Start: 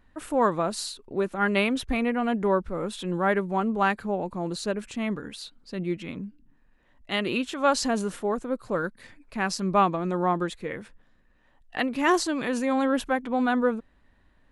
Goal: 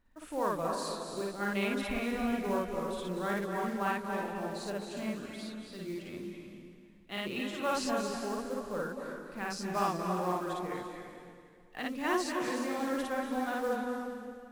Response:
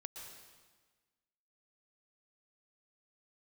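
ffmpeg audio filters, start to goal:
-filter_complex "[0:a]acrusher=bits=5:mode=log:mix=0:aa=0.000001,flanger=delay=3.1:depth=6.6:regen=-73:speed=0.58:shape=triangular,asplit=2[a][b];[1:a]atrim=start_sample=2205,asetrate=28224,aresample=44100,adelay=55[c];[b][c]afir=irnorm=-1:irlink=0,volume=3.5dB[d];[a][d]amix=inputs=2:normalize=0,volume=-8dB"

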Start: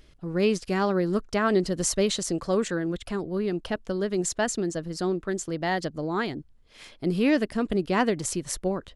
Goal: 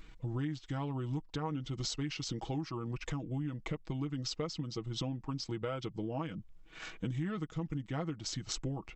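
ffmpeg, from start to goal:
-af "aecho=1:1:4.4:0.64,acompressor=threshold=-34dB:ratio=8,asetrate=31183,aresample=44100,atempo=1.41421"

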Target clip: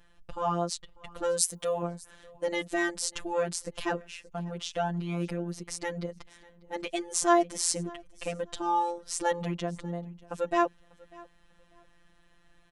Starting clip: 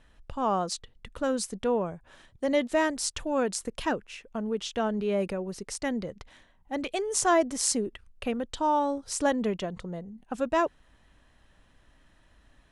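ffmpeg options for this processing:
-filter_complex "[0:a]asettb=1/sr,asplit=3[a][b][c];[a]atrim=end=1.384[d];[b]atrim=start=1.38:end=1.83,asetpts=PTS-STARTPTS,afade=t=in:d=0.004:c=qsin,afade=t=out:st=0.446:d=0.004:c=qsin,aemphasis=mode=production:type=bsi[e];[c]atrim=start=1.826[f];[d][e]acrossfade=d=0.004:c1=hsin:c2=qsin[g];[g][f]acrossfade=d=0.004:c1=qsin:c2=hsin,aecho=1:1:594|1188:0.0668|0.0154,afftfilt=real='hypot(re,im)*cos(PI*b)':imag='0':win_size=1024:overlap=0.75,volume=2dB"

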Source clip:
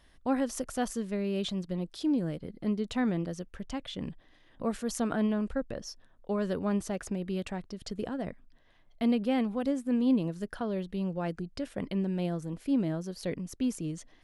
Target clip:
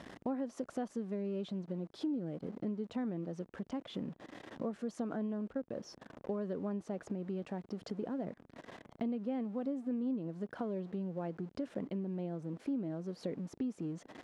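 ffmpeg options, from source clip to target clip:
-af "aeval=exprs='val(0)+0.5*0.00668*sgn(val(0))':c=same,tiltshelf=f=1.5k:g=8.5,acompressor=threshold=-35dB:ratio=4,highpass=190,lowpass=7.6k,volume=-1dB"

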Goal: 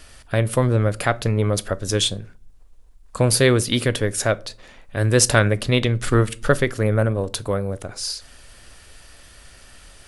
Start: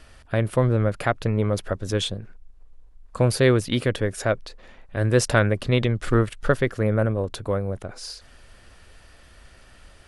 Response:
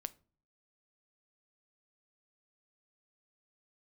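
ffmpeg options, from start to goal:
-filter_complex "[0:a]highshelf=f=4.1k:g=11.5,asplit=2[a][b];[1:a]atrim=start_sample=2205[c];[b][c]afir=irnorm=-1:irlink=0,volume=16.5dB[d];[a][d]amix=inputs=2:normalize=0,volume=-13.5dB"

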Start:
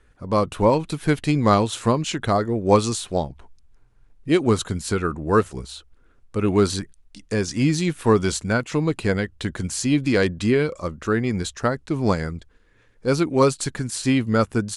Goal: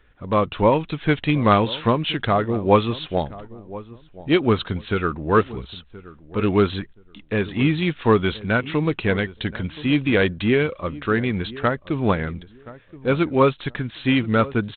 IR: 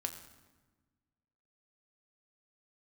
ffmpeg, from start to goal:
-filter_complex "[0:a]highshelf=f=2.2k:g=9,asplit=2[a][b];[b]adelay=1025,lowpass=f=940:p=1,volume=-17dB,asplit=2[c][d];[d]adelay=1025,lowpass=f=940:p=1,volume=0.24[e];[a][c][e]amix=inputs=3:normalize=0" -ar 8000 -c:a adpcm_g726 -b:a 32k

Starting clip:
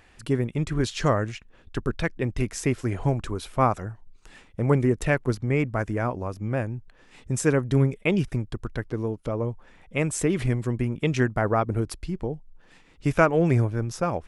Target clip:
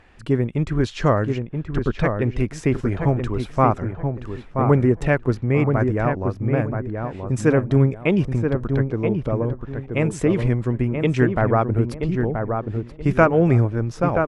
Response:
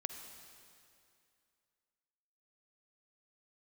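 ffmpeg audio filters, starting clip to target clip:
-filter_complex "[0:a]aemphasis=mode=reproduction:type=75kf,asplit=2[a][b];[b]adelay=978,lowpass=f=1.6k:p=1,volume=-5dB,asplit=2[c][d];[d]adelay=978,lowpass=f=1.6k:p=1,volume=0.28,asplit=2[e][f];[f]adelay=978,lowpass=f=1.6k:p=1,volume=0.28,asplit=2[g][h];[h]adelay=978,lowpass=f=1.6k:p=1,volume=0.28[i];[a][c][e][g][i]amix=inputs=5:normalize=0,volume=4.5dB"

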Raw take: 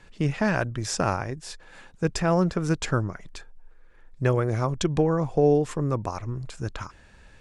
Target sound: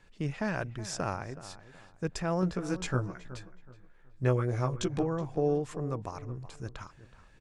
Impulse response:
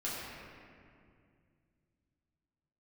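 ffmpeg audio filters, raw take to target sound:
-filter_complex "[0:a]asettb=1/sr,asplit=3[a][b][c];[a]atrim=end=2.414[d];[b]atrim=start=2.41:end=5.03,asetpts=PTS-STARTPTS,afade=t=in:d=0.004:c=qsin,afade=t=out:st=2.616:d=0.004:c=qsin,asplit=2[e][f];[f]adelay=16,volume=-2dB[g];[e][g]amix=inputs=2:normalize=0,atrim=end_sample=115542[h];[c]atrim=start=5.026[i];[d][h]acrossfade=d=0.004:c1=hsin:c2=qsin[j];[j][i]acrossfade=d=0.004:c1=qsin:c2=hsin,asplit=2[k][l];[l]adelay=373,lowpass=f=2.5k:p=1,volume=-15dB,asplit=2[m][n];[n]adelay=373,lowpass=f=2.5k:p=1,volume=0.32,asplit=2[o][p];[p]adelay=373,lowpass=f=2.5k:p=1,volume=0.32[q];[k][m][o][q]amix=inputs=4:normalize=0,volume=-8.5dB"

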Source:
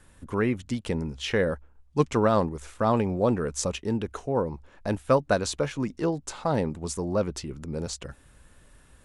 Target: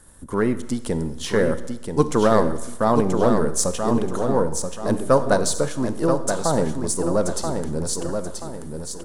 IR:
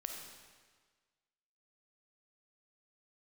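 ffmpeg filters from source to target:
-filter_complex "[0:a]aeval=exprs='if(lt(val(0),0),0.708*val(0),val(0))':c=same,equalizer=f=100:t=o:w=0.67:g=-5,equalizer=f=2.5k:t=o:w=0.67:g=-11,equalizer=f=10k:t=o:w=0.67:g=10,aecho=1:1:981|1962|2943|3924:0.501|0.185|0.0686|0.0254,asplit=2[a][b];[1:a]atrim=start_sample=2205,asetrate=66150,aresample=44100[c];[b][c]afir=irnorm=-1:irlink=0,volume=-0.5dB[d];[a][d]amix=inputs=2:normalize=0,volume=3dB"

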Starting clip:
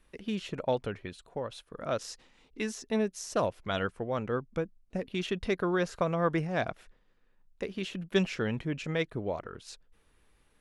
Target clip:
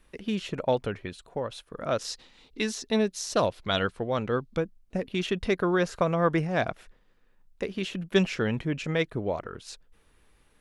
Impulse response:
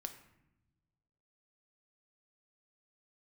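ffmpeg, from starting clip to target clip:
-filter_complex "[0:a]asettb=1/sr,asplit=3[a][b][c];[a]atrim=end=2.054[d];[b]atrim=start=2.05:end=4.6,asetpts=PTS-STARTPTS,afade=t=in:d=0.004:c=qsin,afade=t=out:st=2.546:d=0.004:c=qsin,equalizer=f=4k:w=2:g=8.5[e];[c]atrim=start=4.596[f];[d][e]acrossfade=d=0.004:c1=hsin:c2=qsin[g];[g][f]acrossfade=d=0.004:c1=qsin:c2=hsin,volume=4dB"

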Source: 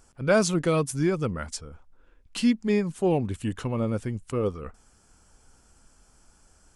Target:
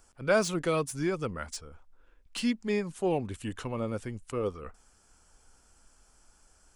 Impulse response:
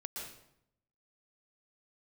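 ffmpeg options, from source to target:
-filter_complex "[0:a]equalizer=f=140:w=0.48:g=-6.5,acrossover=split=430|3800[a][b][c];[c]asoftclip=type=tanh:threshold=-29.5dB[d];[a][b][d]amix=inputs=3:normalize=0,volume=-2dB"

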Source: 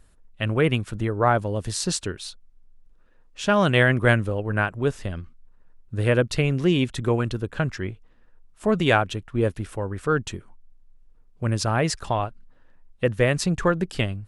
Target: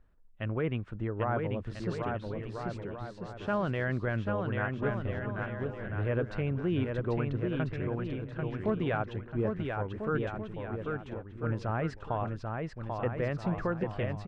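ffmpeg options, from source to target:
-af "lowpass=1.9k,alimiter=limit=-13dB:level=0:latency=1:release=15,aecho=1:1:790|1343|1730|2001|2191:0.631|0.398|0.251|0.158|0.1,volume=-8.5dB"

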